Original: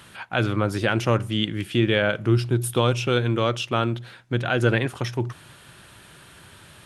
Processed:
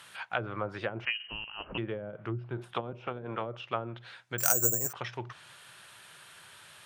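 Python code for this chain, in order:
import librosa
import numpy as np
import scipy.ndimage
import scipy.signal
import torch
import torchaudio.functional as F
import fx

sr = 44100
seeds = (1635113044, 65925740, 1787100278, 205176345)

y = fx.spec_clip(x, sr, under_db=14, at=(2.56, 3.45), fade=0.02)
y = fx.peak_eq(y, sr, hz=270.0, db=-14.5, octaves=1.6)
y = fx.env_lowpass_down(y, sr, base_hz=330.0, full_db=-20.0)
y = scipy.signal.sosfilt(scipy.signal.butter(2, 190.0, 'highpass', fs=sr, output='sos'), y)
y = fx.freq_invert(y, sr, carrier_hz=3000, at=(1.05, 1.78))
y = fx.resample_bad(y, sr, factor=6, down='filtered', up='zero_stuff', at=(4.38, 4.93))
y = y * librosa.db_to_amplitude(-2.5)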